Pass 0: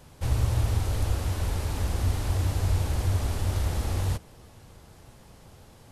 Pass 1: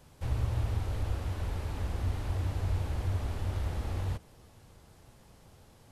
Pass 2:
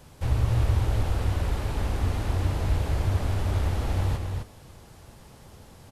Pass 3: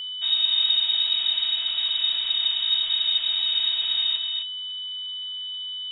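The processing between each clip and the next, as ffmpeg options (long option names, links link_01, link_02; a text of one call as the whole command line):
ffmpeg -i in.wav -filter_complex "[0:a]acrossover=split=3700[link_01][link_02];[link_02]acompressor=threshold=-51dB:ratio=4:attack=1:release=60[link_03];[link_01][link_03]amix=inputs=2:normalize=0,volume=-6dB" out.wav
ffmpeg -i in.wav -af "aecho=1:1:258:0.562,volume=7dB" out.wav
ffmpeg -i in.wav -af "lowpass=frequency=3200:width_type=q:width=0.5098,lowpass=frequency=3200:width_type=q:width=0.6013,lowpass=frequency=3200:width_type=q:width=0.9,lowpass=frequency=3200:width_type=q:width=2.563,afreqshift=-3800,asubboost=boost=4:cutoff=100,aeval=exprs='val(0)+0.0316*sin(2*PI*3000*n/s)':channel_layout=same" out.wav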